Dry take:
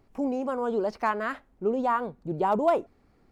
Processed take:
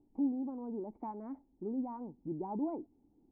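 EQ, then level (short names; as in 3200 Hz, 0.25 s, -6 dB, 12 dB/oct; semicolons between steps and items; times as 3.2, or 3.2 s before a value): vocal tract filter u; dynamic EQ 510 Hz, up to -7 dB, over -48 dBFS, Q 0.79; +3.0 dB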